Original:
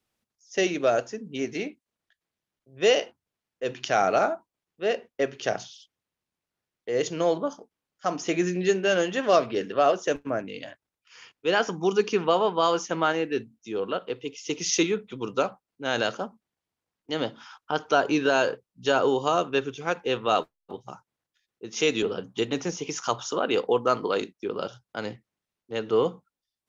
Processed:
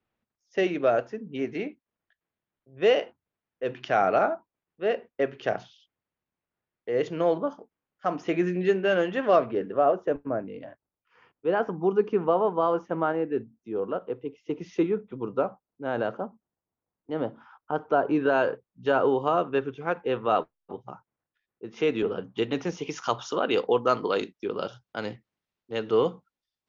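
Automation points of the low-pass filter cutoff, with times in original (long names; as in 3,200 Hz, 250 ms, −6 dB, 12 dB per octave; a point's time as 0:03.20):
0:09.25 2,300 Hz
0:09.71 1,100 Hz
0:18.00 1,100 Hz
0:18.40 1,800 Hz
0:21.92 1,800 Hz
0:22.49 3,200 Hz
0:23.60 5,100 Hz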